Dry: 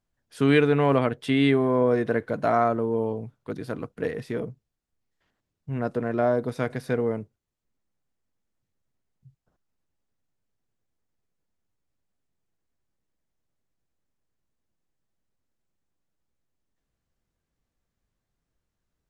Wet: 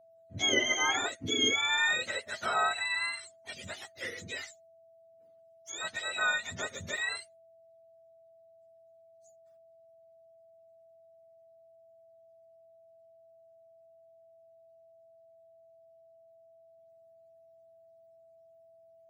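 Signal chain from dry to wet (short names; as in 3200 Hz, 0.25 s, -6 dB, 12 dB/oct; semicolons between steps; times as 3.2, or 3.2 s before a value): spectrum mirrored in octaves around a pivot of 950 Hz; whine 660 Hz -52 dBFS; gain -5 dB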